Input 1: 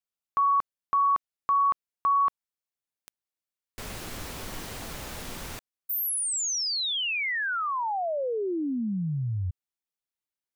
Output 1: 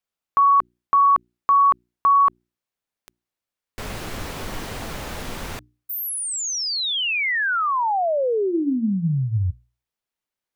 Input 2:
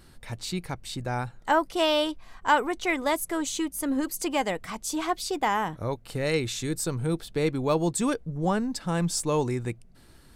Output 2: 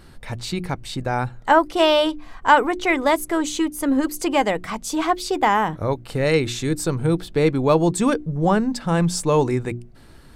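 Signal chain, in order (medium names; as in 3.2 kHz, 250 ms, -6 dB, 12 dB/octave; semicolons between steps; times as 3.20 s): treble shelf 4.1 kHz -7.5 dB; hum notches 60/120/180/240/300/360 Hz; trim +8 dB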